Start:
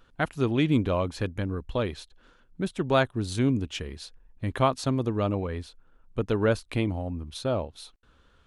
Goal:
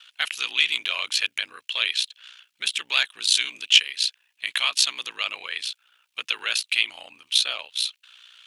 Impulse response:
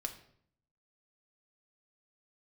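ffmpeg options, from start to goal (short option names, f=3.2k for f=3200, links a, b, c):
-af "aeval=exprs='val(0)*sin(2*PI*30*n/s)':c=same,apsyclip=27.5dB,highpass=f=2.8k:t=q:w=2.5,volume=-9dB"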